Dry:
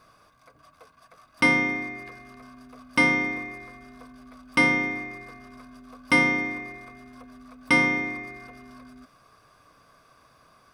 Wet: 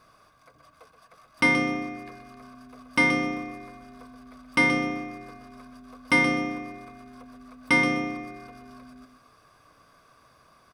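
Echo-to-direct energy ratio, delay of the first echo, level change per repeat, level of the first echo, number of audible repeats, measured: -8.5 dB, 126 ms, -13.0 dB, -8.5 dB, 2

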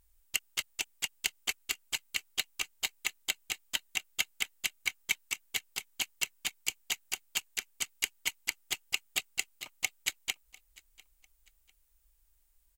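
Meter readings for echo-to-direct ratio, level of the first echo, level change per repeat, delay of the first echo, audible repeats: -23.0 dB, -23.5 dB, -9.5 dB, 698 ms, 2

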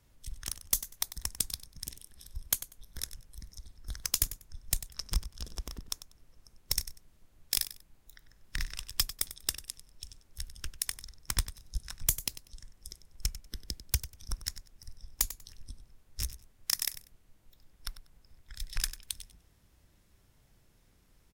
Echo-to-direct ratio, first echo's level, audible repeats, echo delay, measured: -14.0 dB, -14.0 dB, 2, 96 ms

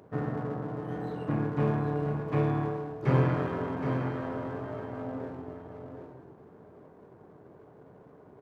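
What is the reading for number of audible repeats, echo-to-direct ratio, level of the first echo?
3, -5.5 dB, -6.0 dB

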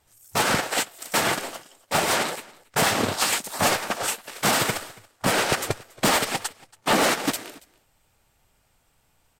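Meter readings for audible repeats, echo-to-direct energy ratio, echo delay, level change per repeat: 1, -23.5 dB, 280 ms, no regular repeats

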